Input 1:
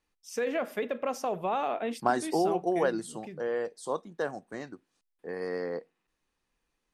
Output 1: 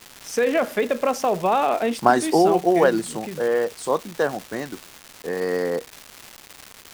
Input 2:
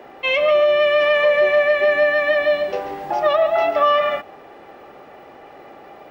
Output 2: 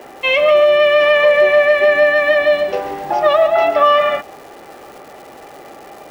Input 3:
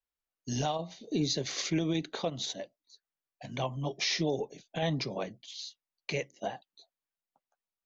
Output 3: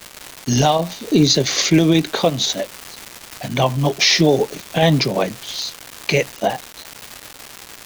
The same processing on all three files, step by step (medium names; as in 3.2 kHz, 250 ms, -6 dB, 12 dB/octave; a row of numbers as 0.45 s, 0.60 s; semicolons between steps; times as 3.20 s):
crackle 530 per s -38 dBFS; peak normalisation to -2 dBFS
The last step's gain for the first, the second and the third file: +10.0 dB, +4.5 dB, +16.5 dB